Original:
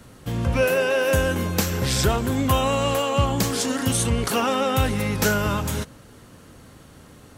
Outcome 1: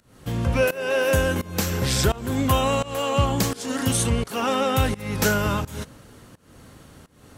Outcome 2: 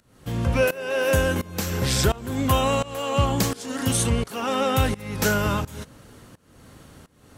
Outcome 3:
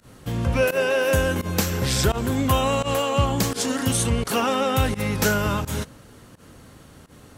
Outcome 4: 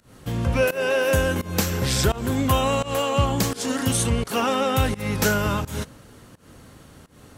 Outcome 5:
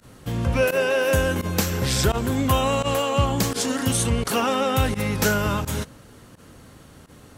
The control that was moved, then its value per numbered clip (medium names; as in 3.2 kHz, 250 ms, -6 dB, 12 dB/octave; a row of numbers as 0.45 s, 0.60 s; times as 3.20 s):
volume shaper, release: 340 ms, 508 ms, 97 ms, 201 ms, 64 ms